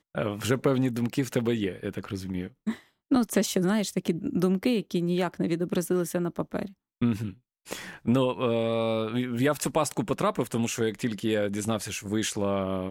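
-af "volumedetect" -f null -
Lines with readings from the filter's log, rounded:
mean_volume: -27.7 dB
max_volume: -11.7 dB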